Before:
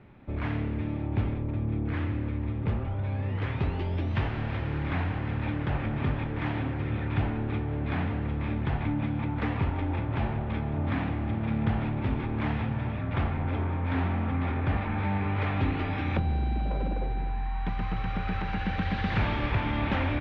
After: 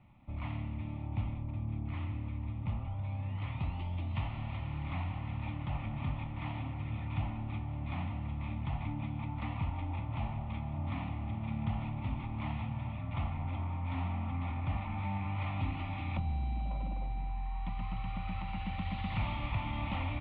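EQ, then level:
phaser with its sweep stopped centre 1,600 Hz, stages 6
−6.0 dB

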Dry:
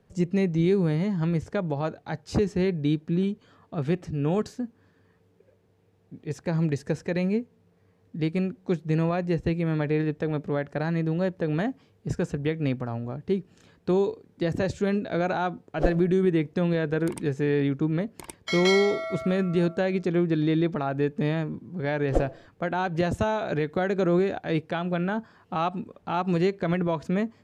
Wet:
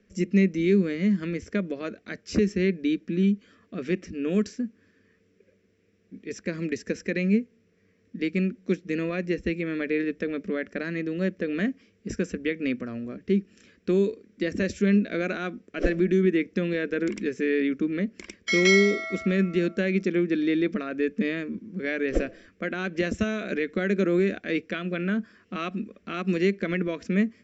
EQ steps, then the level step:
Chebyshev low-pass with heavy ripple 7,600 Hz, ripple 9 dB
parametric band 200 Hz +13.5 dB 0.39 octaves
phaser with its sweep stopped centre 350 Hz, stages 4
+8.5 dB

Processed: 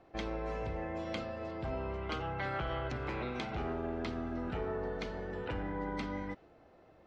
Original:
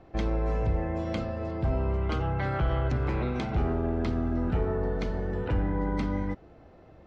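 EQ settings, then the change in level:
dynamic equaliser 3,100 Hz, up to +4 dB, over −55 dBFS, Q 0.83
low-shelf EQ 210 Hz −11 dB
−4.5 dB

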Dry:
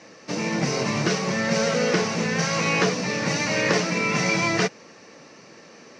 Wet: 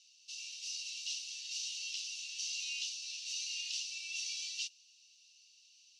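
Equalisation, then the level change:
Chebyshev high-pass with heavy ripple 2,700 Hz, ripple 3 dB
−6.5 dB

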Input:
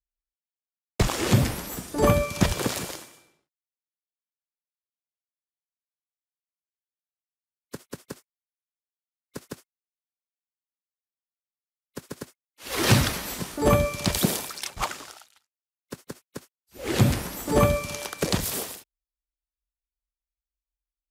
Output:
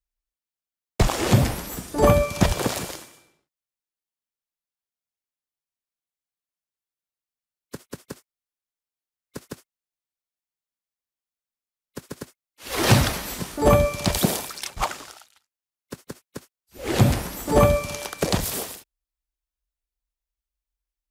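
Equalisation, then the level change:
low-shelf EQ 61 Hz +6.5 dB
dynamic equaliser 720 Hz, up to +5 dB, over −38 dBFS, Q 1.5
+1.0 dB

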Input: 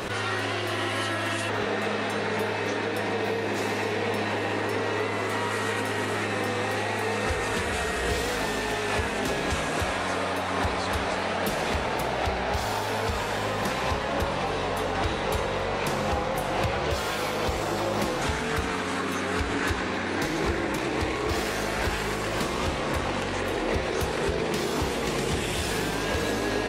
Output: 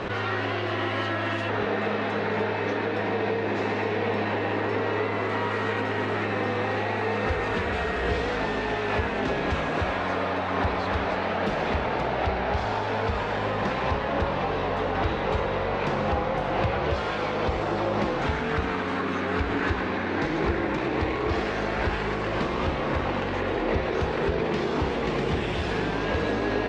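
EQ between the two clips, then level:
high-frequency loss of the air 140 metres
high-shelf EQ 5,800 Hz −10.5 dB
+2.0 dB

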